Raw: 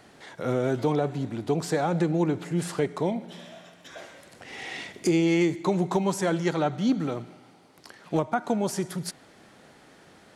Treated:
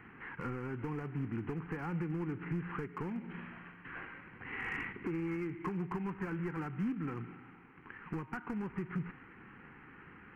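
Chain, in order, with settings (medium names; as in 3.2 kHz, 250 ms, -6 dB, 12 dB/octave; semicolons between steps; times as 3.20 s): CVSD coder 16 kbps; compression 12:1, threshold -32 dBFS, peak gain reduction 13.5 dB; hard clipper -30.5 dBFS, distortion -16 dB; static phaser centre 1.5 kHz, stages 4; trim +2 dB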